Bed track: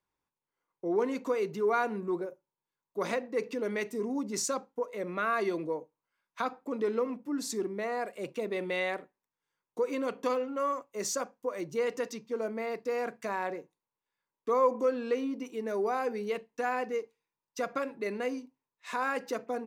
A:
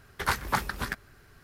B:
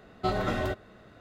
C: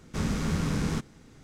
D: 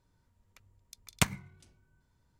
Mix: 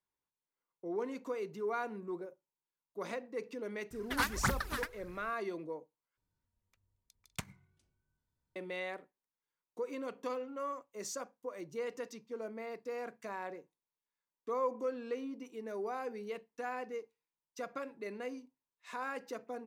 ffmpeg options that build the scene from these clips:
-filter_complex "[0:a]volume=-8.5dB[a];[1:a]aphaser=in_gain=1:out_gain=1:delay=4.2:decay=0.74:speed=1.7:type=triangular[b];[a]asplit=2[c][d];[c]atrim=end=6.174[e];[4:a]atrim=end=2.39,asetpts=PTS-STARTPTS,volume=-15dB[f];[d]atrim=start=8.556[g];[b]atrim=end=1.43,asetpts=PTS-STARTPTS,volume=-7.5dB,afade=t=in:d=0.004:c=hsin,afade=t=out:st=1.426:d=0.004:c=hsin,adelay=3910[h];[e][f]acrossfade=d=0.004:c1=hsin:c2=hsin[i];[i][g]acrossfade=d=0.004:c1=hsin:c2=hsin[j];[j][h]amix=inputs=2:normalize=0"

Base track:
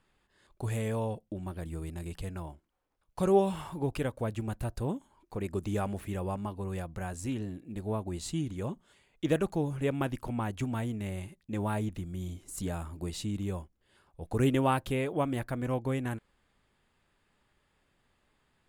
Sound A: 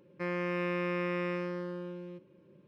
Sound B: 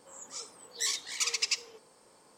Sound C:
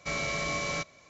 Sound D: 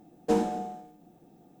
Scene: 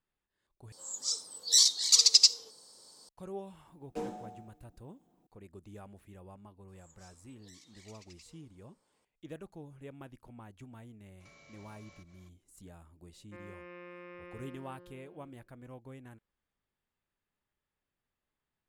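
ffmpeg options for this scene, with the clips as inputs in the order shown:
-filter_complex "[2:a]asplit=2[a][b];[0:a]volume=-17.5dB[c];[a]highshelf=f=3.2k:t=q:w=3:g=10[d];[4:a]flanger=delay=3.5:depth=3.9:regen=-62:speed=1.5:shape=triangular[e];[b]acompressor=threshold=-38dB:ratio=6:attack=3.2:release=140:knee=1:detection=peak[f];[3:a]acompressor=threshold=-47dB:ratio=6:attack=3.2:release=140:knee=1:detection=peak[g];[1:a]highpass=240,lowpass=3.7k[h];[c]asplit=2[i][j];[i]atrim=end=0.724[k];[d]atrim=end=2.37,asetpts=PTS-STARTPTS,volume=-4.5dB[l];[j]atrim=start=3.086[m];[e]atrim=end=1.6,asetpts=PTS-STARTPTS,volume=-9dB,afade=t=in:d=0.004:c=hsin,afade=t=out:st=1.596:d=0.004:c=hsin,adelay=3670[n];[f]atrim=end=2.37,asetpts=PTS-STARTPTS,volume=-16.5dB,afade=t=in:d=0.004:c=hsin,afade=t=out:st=2.366:d=0.004:c=hsin,adelay=6680[o];[g]atrim=end=1.09,asetpts=PTS-STARTPTS,volume=-10.5dB,afade=t=in:d=0.004:c=hsin,afade=t=out:st=1.086:d=0.004:c=hsin,adelay=11200[p];[h]atrim=end=2.67,asetpts=PTS-STARTPTS,volume=-15dB,afade=t=in:d=0.004:c=hsin,afade=t=out:st=2.666:d=0.004:c=hsin,adelay=13120[q];[k][l]acrossfade=d=0.004:c1=hsin:c2=hsin[r];[r][m]acrossfade=d=0.004:c1=hsin:c2=hsin[s];[s][n][o][p][q]amix=inputs=5:normalize=0"

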